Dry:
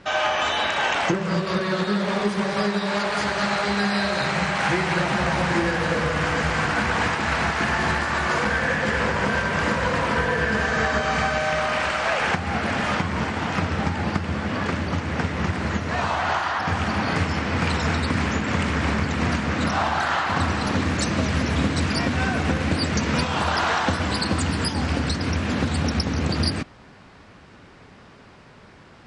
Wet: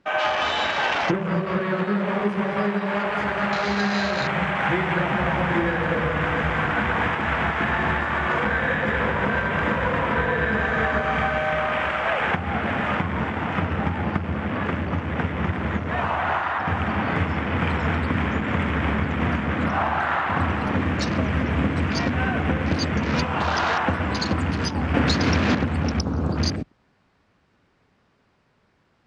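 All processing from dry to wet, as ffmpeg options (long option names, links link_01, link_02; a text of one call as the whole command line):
ffmpeg -i in.wav -filter_complex "[0:a]asettb=1/sr,asplit=3[link_01][link_02][link_03];[link_01]atrim=end=24.944[link_04];[link_02]atrim=start=24.94:end=25.55,asetpts=PTS-STARTPTS,afade=type=in:duration=0.004:curve=qsin,afade=type=out:start_time=0.606:duration=0.004:curve=qsin,lowshelf=frequency=76:gain=-9.5,acontrast=61[link_05];[link_03]atrim=start=25.546[link_06];[link_04][link_05]acrossfade=duration=0.004:curve1=hsin:curve2=qsin[link_07];[link_07][link_06]acrossfade=duration=0.004:curve1=qsin:curve2=hsin,afwtdn=0.0282,highshelf=frequency=9100:gain=-3.5" out.wav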